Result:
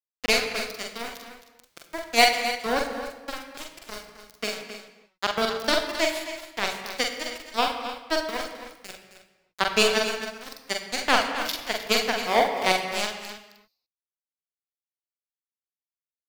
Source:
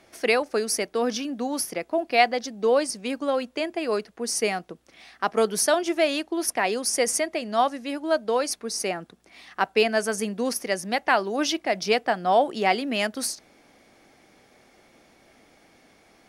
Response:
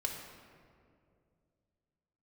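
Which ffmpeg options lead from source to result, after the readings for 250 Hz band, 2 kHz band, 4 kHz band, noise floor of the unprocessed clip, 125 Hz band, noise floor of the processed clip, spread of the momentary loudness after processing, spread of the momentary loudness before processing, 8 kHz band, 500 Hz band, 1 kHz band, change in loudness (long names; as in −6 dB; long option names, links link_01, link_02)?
−6.5 dB, +1.5 dB, +4.0 dB, −58 dBFS, −4.0 dB, below −85 dBFS, 19 LU, 7 LU, −5.5 dB, −5.0 dB, −2.0 dB, −0.5 dB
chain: -filter_complex "[0:a]highshelf=frequency=6200:width_type=q:width=3:gain=-10.5,aeval=exprs='val(0)*gte(abs(val(0)),0.126)':channel_layout=same,aeval=exprs='0.708*(cos(1*acos(clip(val(0)/0.708,-1,1)))-cos(1*PI/2))+0.1*(cos(7*acos(clip(val(0)/0.708,-1,1)))-cos(7*PI/2))':channel_layout=same,aecho=1:1:265:0.266,asplit=2[link_01][link_02];[1:a]atrim=start_sample=2205,afade=type=out:start_time=0.35:duration=0.01,atrim=end_sample=15876,adelay=43[link_03];[link_02][link_03]afir=irnorm=-1:irlink=0,volume=-3dB[link_04];[link_01][link_04]amix=inputs=2:normalize=0"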